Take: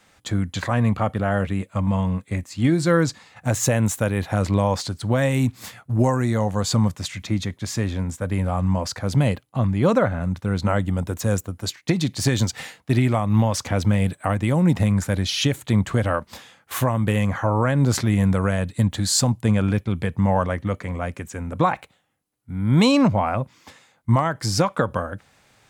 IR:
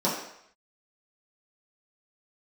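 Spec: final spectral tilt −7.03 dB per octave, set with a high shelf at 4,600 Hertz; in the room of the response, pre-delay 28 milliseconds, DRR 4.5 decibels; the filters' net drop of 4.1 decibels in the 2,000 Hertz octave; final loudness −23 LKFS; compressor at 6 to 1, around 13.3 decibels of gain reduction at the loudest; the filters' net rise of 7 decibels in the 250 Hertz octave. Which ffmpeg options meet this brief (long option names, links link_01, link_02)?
-filter_complex "[0:a]equalizer=frequency=250:width_type=o:gain=9,equalizer=frequency=2000:width_type=o:gain=-5,highshelf=frequency=4600:gain=-3.5,acompressor=threshold=-22dB:ratio=6,asplit=2[link_01][link_02];[1:a]atrim=start_sample=2205,adelay=28[link_03];[link_02][link_03]afir=irnorm=-1:irlink=0,volume=-17dB[link_04];[link_01][link_04]amix=inputs=2:normalize=0,volume=0.5dB"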